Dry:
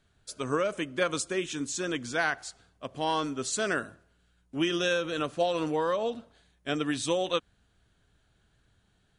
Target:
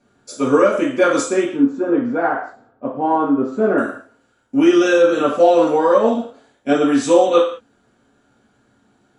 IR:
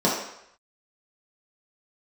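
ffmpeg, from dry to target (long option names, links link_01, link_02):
-filter_complex "[0:a]asettb=1/sr,asplit=3[link_01][link_02][link_03];[link_01]atrim=end=1.444[link_04];[link_02]atrim=start=1.44:end=3.78,asetpts=PTS-STARTPTS,afade=type=in:duration=0.004:curve=qsin,afade=type=out:start_time=2.336:duration=0.004:curve=qsin,lowpass=1100[link_05];[link_03]atrim=start=3.776[link_06];[link_04][link_05]acrossfade=duration=0.004:curve1=hsin:curve2=qsin[link_07];[link_07][link_06]acrossfade=duration=0.004:curve1=qsin:curve2=hsin[link_08];[1:a]atrim=start_sample=2205,afade=type=out:start_time=0.33:duration=0.01,atrim=end_sample=14994,asetrate=57330,aresample=44100[link_09];[link_08][link_09]afir=irnorm=-1:irlink=0,volume=-4dB"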